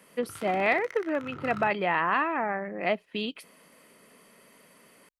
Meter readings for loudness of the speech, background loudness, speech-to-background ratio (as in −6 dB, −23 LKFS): −28.0 LKFS, −43.5 LKFS, 15.5 dB